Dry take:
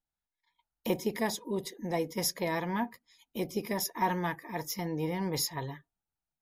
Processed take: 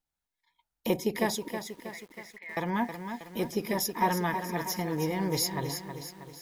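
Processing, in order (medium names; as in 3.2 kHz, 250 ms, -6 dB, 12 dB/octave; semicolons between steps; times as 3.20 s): 1.48–2.57 s: band-pass filter 2 kHz, Q 8.8; bit-crushed delay 319 ms, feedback 55%, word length 9-bit, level -8 dB; trim +2.5 dB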